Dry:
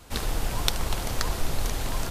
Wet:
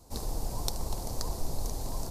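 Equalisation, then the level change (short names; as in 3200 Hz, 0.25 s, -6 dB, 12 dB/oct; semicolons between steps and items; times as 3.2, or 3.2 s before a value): band shelf 2100 Hz -15 dB; -5.5 dB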